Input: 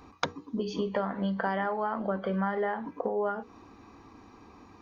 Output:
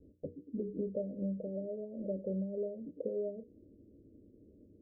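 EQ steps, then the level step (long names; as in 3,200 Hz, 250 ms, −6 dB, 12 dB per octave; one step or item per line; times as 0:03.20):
Chebyshev low-pass filter 610 Hz, order 8
−5.0 dB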